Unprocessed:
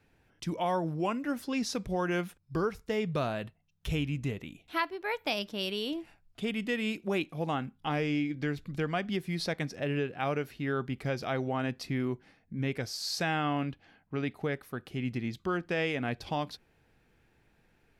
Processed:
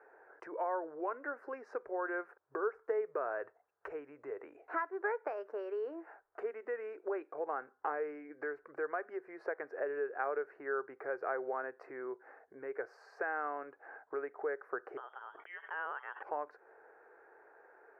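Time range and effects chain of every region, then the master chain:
14.97–16.23 s: bass shelf 160 Hz +5.5 dB + frequency inversion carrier 3.4 kHz + decay stretcher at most 27 dB/s
whole clip: compression 5:1, threshold -42 dBFS; dynamic bell 760 Hz, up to -6 dB, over -57 dBFS, Q 1.3; elliptic band-pass 410–1600 Hz, stop band 40 dB; trim +13.5 dB

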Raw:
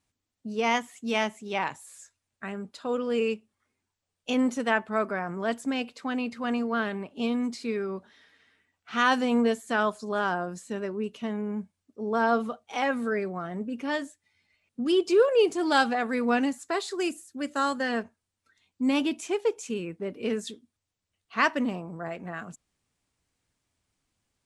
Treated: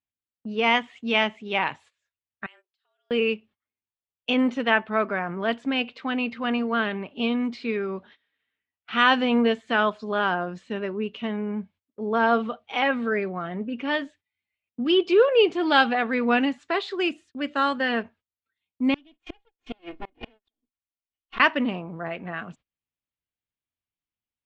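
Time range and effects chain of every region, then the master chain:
2.46–3.11 s: differentiator + compression, threshold -53 dBFS + frequency shift +180 Hz
18.94–21.40 s: comb filter that takes the minimum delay 3.7 ms + comb 2.8 ms, depth 56% + inverted gate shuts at -26 dBFS, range -32 dB
whole clip: Chebyshev low-pass 3.1 kHz, order 3; gate -53 dBFS, range -22 dB; treble shelf 2.5 kHz +11 dB; trim +2.5 dB

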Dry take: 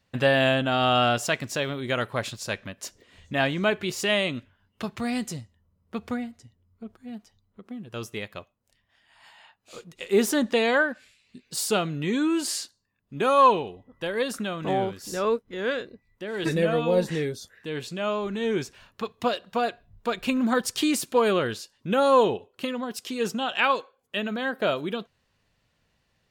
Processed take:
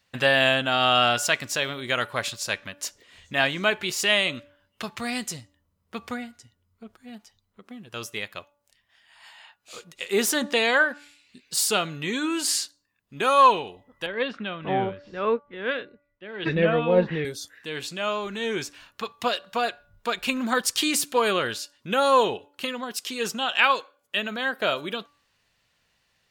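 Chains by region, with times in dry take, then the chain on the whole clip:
14.06–17.25 s: low-pass 3.1 kHz 24 dB/octave + bass shelf 350 Hz +7 dB + three bands expanded up and down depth 70%
whole clip: tilt shelf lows -5.5 dB, about 730 Hz; de-hum 289.1 Hz, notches 5

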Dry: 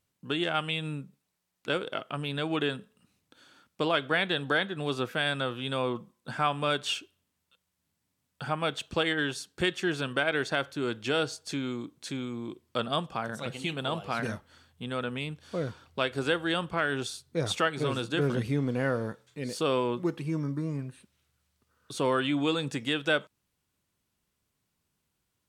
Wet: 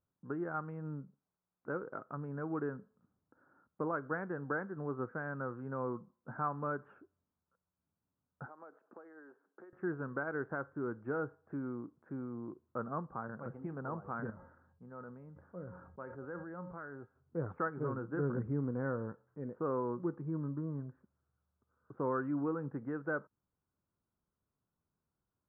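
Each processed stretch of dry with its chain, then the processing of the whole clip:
8.46–9.73 s: compression 12:1, threshold -40 dBFS + high-pass 280 Hz 24 dB/octave
14.30–17.16 s: feedback comb 180 Hz, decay 0.38 s, harmonics odd, mix 70% + decay stretcher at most 49 dB/s
whole clip: steep low-pass 1.5 kHz 48 dB/octave; dynamic bell 670 Hz, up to -7 dB, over -47 dBFS, Q 3.3; trim -6.5 dB

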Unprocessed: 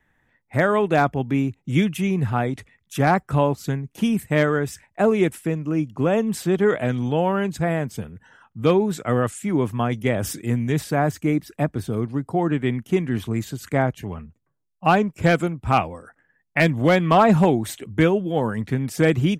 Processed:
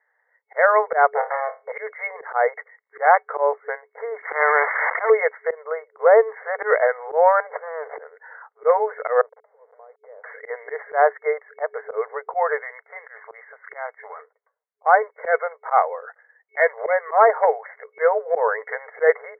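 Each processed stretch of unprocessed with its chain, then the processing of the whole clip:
1.15–1.72 s: waveshaping leveller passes 3 + AM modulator 130 Hz, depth 30% + flutter echo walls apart 4.6 m, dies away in 0.24 s
4.22–5.10 s: zero-crossing glitches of -20.5 dBFS + dynamic bell 870 Hz, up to +7 dB, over -33 dBFS, Q 1.1 + spectrum-flattening compressor 4:1
7.40–7.98 s: compressor with a negative ratio -32 dBFS + sliding maximum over 33 samples
9.21–10.24 s: send-on-delta sampling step -26.5 dBFS + band-pass filter 180 Hz, Q 2.1 + compression 12:1, threshold -38 dBFS
12.62–14.19 s: partial rectifier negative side -3 dB + high-pass 1.3 kHz 6 dB/octave + compression 2:1, threshold -39 dBFS
whole clip: FFT band-pass 430–2200 Hz; slow attack 117 ms; level rider gain up to 11.5 dB; trim -1 dB

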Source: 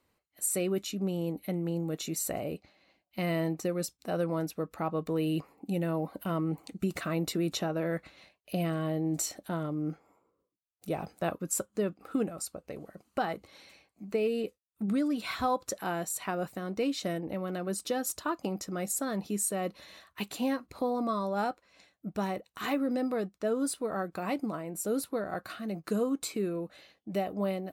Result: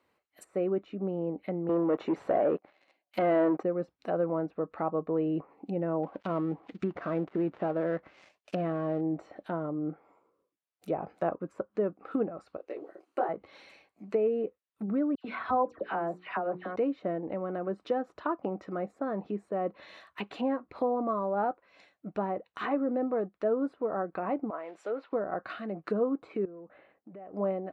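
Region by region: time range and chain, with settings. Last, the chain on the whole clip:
1.69–3.63 s: high-pass 270 Hz + waveshaping leveller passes 3
6.03–9.01 s: dead-time distortion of 0.14 ms + low-pass 6.7 kHz + treble shelf 3.6 kHz +11.5 dB
12.57–13.29 s: resonant low shelf 240 Hz -11 dB, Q 3 + detune thickener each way 47 cents
15.15–16.76 s: hum notches 60/120/180/240/300/360/420/480 Hz + phase dispersion lows, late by 95 ms, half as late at 2 kHz
24.50–25.13 s: block-companded coder 5-bit + band-pass 510–3200 Hz
26.45–27.34 s: Bessel low-pass 1.4 kHz, order 4 + compression 10:1, threshold -44 dBFS
whole clip: high-pass 67 Hz; low-pass that closes with the level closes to 1.1 kHz, closed at -30.5 dBFS; tone controls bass -9 dB, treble -12 dB; trim +3.5 dB

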